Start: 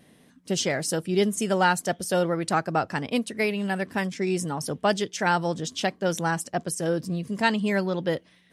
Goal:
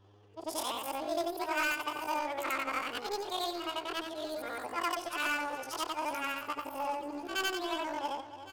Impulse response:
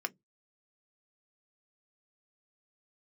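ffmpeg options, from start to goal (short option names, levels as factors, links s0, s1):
-filter_complex "[0:a]afftfilt=real='re':imag='-im':win_size=8192:overlap=0.75,adynamicsmooth=sensitivity=6:basefreq=1900,adynamicequalizer=threshold=0.001:dfrequency=8100:dqfactor=1.5:tfrequency=8100:tqfactor=1.5:attack=5:release=100:ratio=0.375:range=3.5:mode=boostabove:tftype=bell,asplit=2[s0][s1];[s1]adelay=286,lowpass=f=4500:p=1,volume=0.178,asplit=2[s2][s3];[s3]adelay=286,lowpass=f=4500:p=1,volume=0.27,asplit=2[s4][s5];[s5]adelay=286,lowpass=f=4500:p=1,volume=0.27[s6];[s2][s4][s6]amix=inputs=3:normalize=0[s7];[s0][s7]amix=inputs=2:normalize=0,aeval=exprs='0.211*(cos(1*acos(clip(val(0)/0.211,-1,1)))-cos(1*PI/2))+0.00531*(cos(2*acos(clip(val(0)/0.211,-1,1)))-cos(2*PI/2))+0.0944*(cos(5*acos(clip(val(0)/0.211,-1,1)))-cos(5*PI/2))+0.0596*(cos(7*acos(clip(val(0)/0.211,-1,1)))-cos(7*PI/2))':c=same,aeval=exprs='val(0)+0.00141*(sin(2*PI*60*n/s)+sin(2*PI*2*60*n/s)/2+sin(2*PI*3*60*n/s)/3+sin(2*PI*4*60*n/s)/4+sin(2*PI*5*60*n/s)/5)':c=same,acompressor=threshold=0.0112:ratio=1.5,equalizer=f=130:t=o:w=1.2:g=-10.5,asplit=2[s8][s9];[s9]aecho=0:1:1112:0.126[s10];[s8][s10]amix=inputs=2:normalize=0,asetrate=74167,aresample=44100,atempo=0.594604,volume=0.891"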